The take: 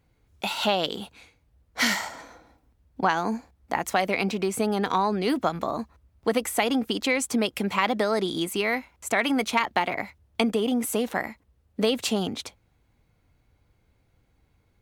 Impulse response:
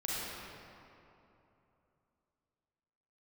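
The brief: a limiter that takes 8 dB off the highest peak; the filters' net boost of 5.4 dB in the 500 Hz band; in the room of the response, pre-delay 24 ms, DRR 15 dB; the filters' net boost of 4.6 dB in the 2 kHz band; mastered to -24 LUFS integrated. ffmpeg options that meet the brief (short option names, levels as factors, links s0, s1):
-filter_complex "[0:a]equalizer=f=500:t=o:g=6.5,equalizer=f=2000:t=o:g=5,alimiter=limit=0.251:level=0:latency=1,asplit=2[s0][s1];[1:a]atrim=start_sample=2205,adelay=24[s2];[s1][s2]afir=irnorm=-1:irlink=0,volume=0.1[s3];[s0][s3]amix=inputs=2:normalize=0,volume=1.06"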